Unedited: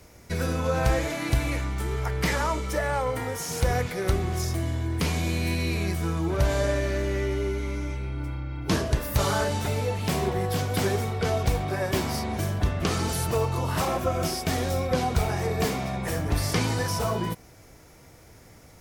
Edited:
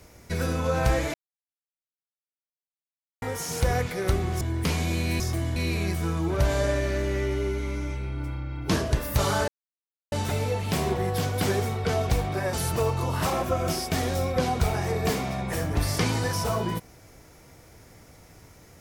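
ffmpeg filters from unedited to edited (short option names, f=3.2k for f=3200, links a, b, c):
-filter_complex "[0:a]asplit=8[a][b][c][d][e][f][g][h];[a]atrim=end=1.14,asetpts=PTS-STARTPTS,afade=t=out:st=1.136:d=0.004:c=hsin[i];[b]atrim=start=1.14:end=3.22,asetpts=PTS-STARTPTS,volume=0[j];[c]atrim=start=3.22:end=4.412,asetpts=PTS-STARTPTS,afade=t=in:d=0.004:c=hsin[k];[d]atrim=start=4.768:end=5.562[l];[e]atrim=start=4.408:end=4.772[m];[f]atrim=start=5.558:end=9.48,asetpts=PTS-STARTPTS,afade=t=out:st=3.918:d=0.004:c=hsin,apad=pad_dur=0.64[n];[g]atrim=start=9.48:end=11.892,asetpts=PTS-STARTPTS,afade=t=in:d=0.004:c=hsin[o];[h]atrim=start=13.078[p];[i][j][k]concat=n=3:v=0:a=1[q];[q][l]acrossfade=d=0.004:c1=hsin:c2=hsin[r];[r][m]acrossfade=d=0.004:c1=hsin:c2=hsin[s];[n][o]concat=n=2:v=0:a=1[t];[s][t]acrossfade=d=0.004:c1=hsin:c2=hsin[u];[u][p]acrossfade=d=0.004:c1=hsin:c2=hsin"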